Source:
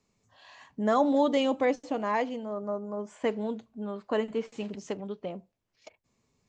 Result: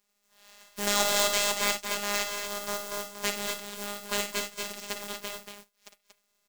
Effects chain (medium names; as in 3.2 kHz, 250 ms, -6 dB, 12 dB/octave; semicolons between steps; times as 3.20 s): spectral contrast reduction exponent 0.23; robot voice 204 Hz; loudspeakers at several distances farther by 19 m -9 dB, 80 m -7 dB